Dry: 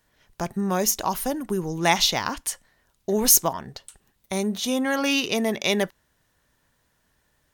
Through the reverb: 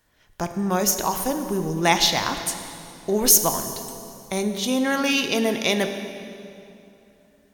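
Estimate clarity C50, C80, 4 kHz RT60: 8.0 dB, 9.0 dB, 2.2 s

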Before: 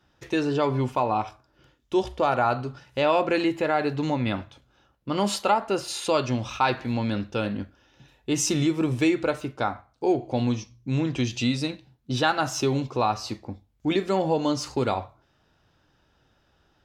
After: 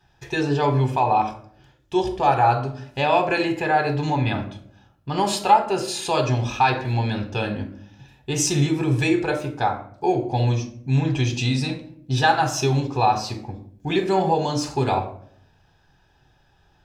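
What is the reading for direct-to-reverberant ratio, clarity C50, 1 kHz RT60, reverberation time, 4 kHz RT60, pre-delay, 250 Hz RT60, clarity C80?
6.0 dB, 11.5 dB, 0.50 s, 0.60 s, 0.35 s, 5 ms, 0.85 s, 15.0 dB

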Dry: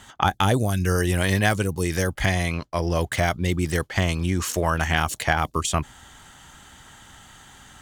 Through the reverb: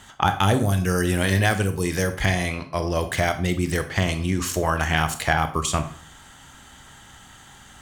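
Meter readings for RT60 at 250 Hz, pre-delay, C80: 0.55 s, 23 ms, 16.0 dB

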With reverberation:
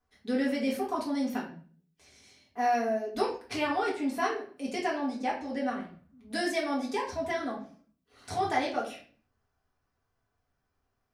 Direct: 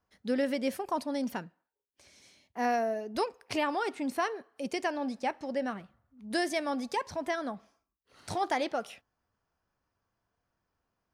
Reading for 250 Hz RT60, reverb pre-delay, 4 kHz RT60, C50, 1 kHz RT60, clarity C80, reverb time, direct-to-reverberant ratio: 0.65 s, 3 ms, 0.35 s, 7.5 dB, 0.40 s, 12.0 dB, 0.45 s, −6.0 dB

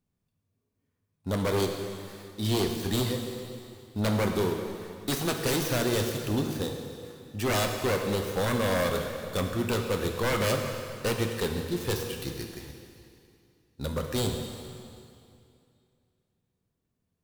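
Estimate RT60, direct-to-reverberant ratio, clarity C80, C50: 2.5 s, 3.0 dB, 5.5 dB, 4.5 dB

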